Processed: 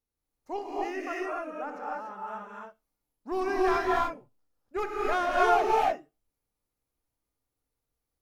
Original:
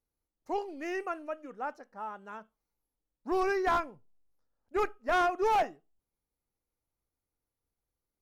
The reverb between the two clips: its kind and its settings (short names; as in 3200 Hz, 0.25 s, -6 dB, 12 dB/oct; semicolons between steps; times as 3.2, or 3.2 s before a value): non-linear reverb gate 0.32 s rising, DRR -4.5 dB; gain -2.5 dB